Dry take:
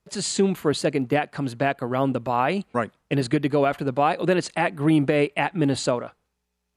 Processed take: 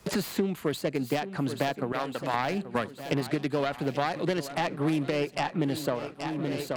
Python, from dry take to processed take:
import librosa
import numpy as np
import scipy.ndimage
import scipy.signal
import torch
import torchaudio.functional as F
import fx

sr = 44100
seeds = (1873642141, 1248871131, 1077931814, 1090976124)

p1 = fx.self_delay(x, sr, depth_ms=0.18)
p2 = fx.highpass(p1, sr, hz=1200.0, slope=6, at=(1.92, 2.34))
p3 = p2 + fx.echo_swing(p2, sr, ms=1382, ratio=1.5, feedback_pct=33, wet_db=-15.0, dry=0)
p4 = fx.band_squash(p3, sr, depth_pct=100)
y = p4 * librosa.db_to_amplitude(-7.0)